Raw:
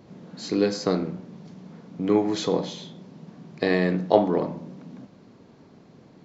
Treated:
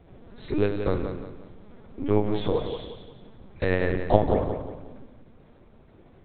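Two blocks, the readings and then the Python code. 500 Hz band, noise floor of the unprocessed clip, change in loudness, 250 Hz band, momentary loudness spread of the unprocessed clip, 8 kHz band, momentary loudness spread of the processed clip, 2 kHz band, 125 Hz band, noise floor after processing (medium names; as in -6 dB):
-1.5 dB, -53 dBFS, -2.0 dB, -4.0 dB, 23 LU, no reading, 17 LU, -1.0 dB, +2.5 dB, -54 dBFS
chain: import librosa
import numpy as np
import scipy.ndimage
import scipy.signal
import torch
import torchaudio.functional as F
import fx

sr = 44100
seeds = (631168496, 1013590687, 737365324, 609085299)

y = fx.peak_eq(x, sr, hz=170.0, db=-8.5, octaves=0.32)
y = fx.notch(y, sr, hz=2900.0, q=23.0)
y = fx.lpc_vocoder(y, sr, seeds[0], excitation='pitch_kept', order=8)
y = fx.echo_feedback(y, sr, ms=178, feedback_pct=37, wet_db=-8.0)
y = y * librosa.db_to_amplitude(-1.0)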